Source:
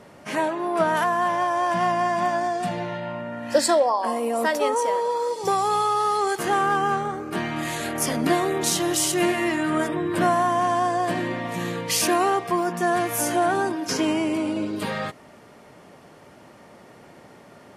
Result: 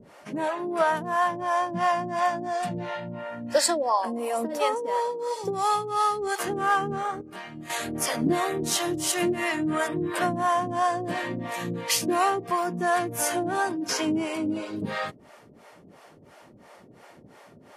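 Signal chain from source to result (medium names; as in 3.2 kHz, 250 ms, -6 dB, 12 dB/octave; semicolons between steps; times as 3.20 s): harmonic tremolo 2.9 Hz, depth 100%, crossover 450 Hz; 7.21–7.70 s: feedback comb 190 Hz, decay 0.32 s, harmonics odd, mix 70%; trim +1.5 dB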